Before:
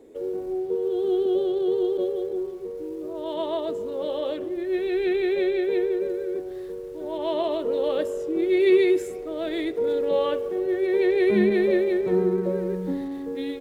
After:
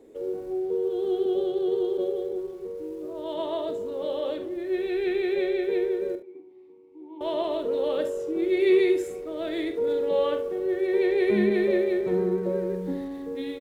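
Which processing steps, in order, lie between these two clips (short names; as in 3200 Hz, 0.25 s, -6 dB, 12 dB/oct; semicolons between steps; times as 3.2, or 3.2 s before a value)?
6.15–7.21 vowel filter u; early reflections 45 ms -10.5 dB, 72 ms -13.5 dB; gain -2.5 dB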